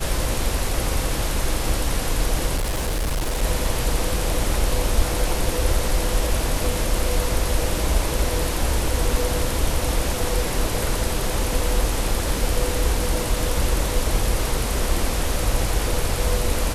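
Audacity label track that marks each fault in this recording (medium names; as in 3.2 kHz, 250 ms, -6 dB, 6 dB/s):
2.560000	3.430000	clipped -19.5 dBFS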